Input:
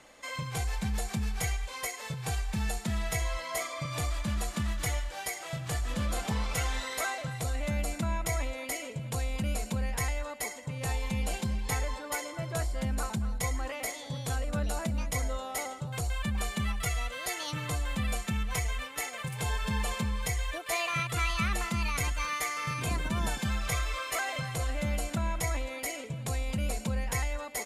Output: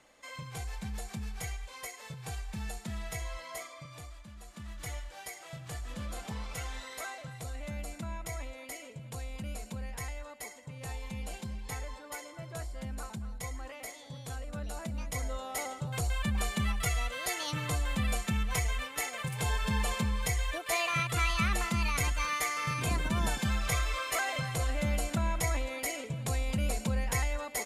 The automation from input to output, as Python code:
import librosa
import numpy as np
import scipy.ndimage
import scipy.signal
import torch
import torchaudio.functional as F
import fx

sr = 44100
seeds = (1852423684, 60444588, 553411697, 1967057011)

y = fx.gain(x, sr, db=fx.line((3.49, -7.0), (4.33, -19.0), (4.91, -8.0), (14.58, -8.0), (15.86, 0.5)))